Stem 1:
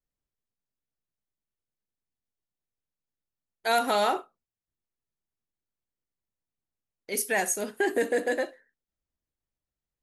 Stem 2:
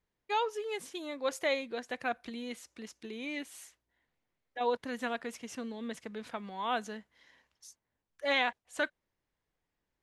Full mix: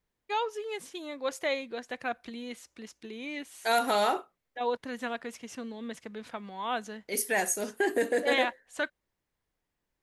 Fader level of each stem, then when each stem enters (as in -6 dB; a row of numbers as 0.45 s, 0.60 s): -1.5 dB, +0.5 dB; 0.00 s, 0.00 s